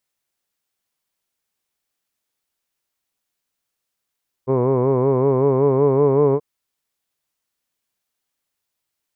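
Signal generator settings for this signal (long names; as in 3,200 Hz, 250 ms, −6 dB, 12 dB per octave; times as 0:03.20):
vowel by formant synthesis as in hood, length 1.93 s, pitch 127 Hz, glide +2 semitones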